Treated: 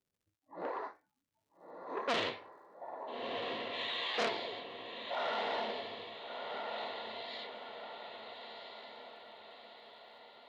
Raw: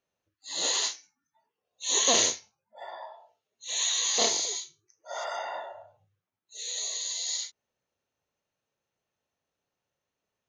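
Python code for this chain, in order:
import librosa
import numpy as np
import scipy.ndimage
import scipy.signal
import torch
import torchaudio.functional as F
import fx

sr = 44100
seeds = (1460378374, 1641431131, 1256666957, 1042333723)

y = fx.env_lowpass(x, sr, base_hz=320.0, full_db=-26.5)
y = fx.cheby2_lowpass(y, sr, hz=fx.steps((0.0, 2800.0), (2.08, 5900.0)), order=4, stop_db=40)
y = fx.dmg_crackle(y, sr, seeds[0], per_s=190.0, level_db=-70.0)
y = y * (1.0 - 0.29 / 2.0 + 0.29 / 2.0 * np.cos(2.0 * np.pi * 1.2 * (np.arange(len(y)) / sr)))
y = fx.echo_diffused(y, sr, ms=1339, feedback_pct=51, wet_db=-5)
y = fx.transformer_sat(y, sr, knee_hz=3100.0)
y = y * 10.0 ** (1.0 / 20.0)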